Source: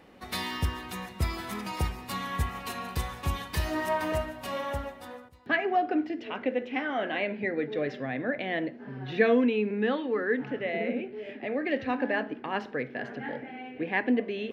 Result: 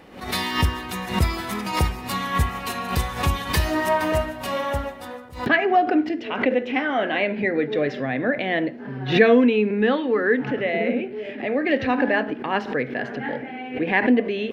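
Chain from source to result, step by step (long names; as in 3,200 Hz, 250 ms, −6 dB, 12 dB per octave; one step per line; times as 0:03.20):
background raised ahead of every attack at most 120 dB per second
level +7.5 dB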